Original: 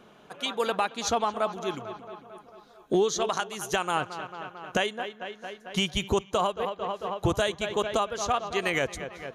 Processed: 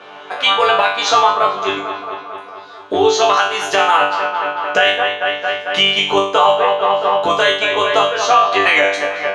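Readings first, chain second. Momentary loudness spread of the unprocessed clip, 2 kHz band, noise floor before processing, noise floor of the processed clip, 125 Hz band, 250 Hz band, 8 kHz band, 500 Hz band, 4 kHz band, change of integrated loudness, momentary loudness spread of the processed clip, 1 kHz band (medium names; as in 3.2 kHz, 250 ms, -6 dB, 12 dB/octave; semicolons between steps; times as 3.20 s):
13 LU, +17.5 dB, -55 dBFS, -35 dBFS, -1.0 dB, +5.0 dB, +7.5 dB, +13.0 dB, +16.5 dB, +14.5 dB, 10 LU, +16.5 dB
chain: octave divider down 2 oct, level +4 dB; in parallel at +1 dB: compression, threshold -35 dBFS, peak gain reduction 17 dB; on the sum: band-pass 610–3500 Hz; chord resonator G2 fifth, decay 0.48 s; loudness maximiser +31 dB; trim -1 dB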